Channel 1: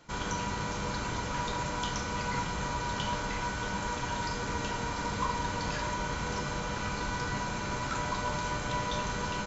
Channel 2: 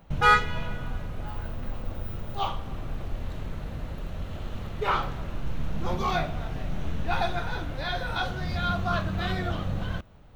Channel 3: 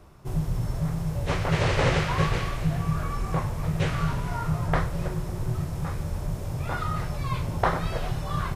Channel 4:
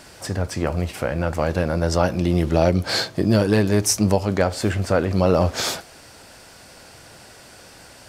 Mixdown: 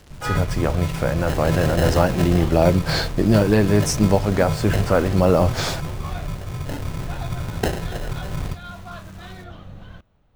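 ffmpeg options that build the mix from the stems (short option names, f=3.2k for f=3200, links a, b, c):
-filter_complex "[0:a]acrusher=bits=4:mix=0:aa=0.000001,asoftclip=type=hard:threshold=-27dB,volume=-15.5dB[a];[1:a]volume=-9.5dB[b];[2:a]lowpass=2.5k,acrusher=samples=38:mix=1:aa=0.000001,volume=1dB[c];[3:a]aemphasis=mode=reproduction:type=cd,acrusher=bits=5:mix=0:aa=0.5,volume=1dB[d];[a][b][c][d]amix=inputs=4:normalize=0"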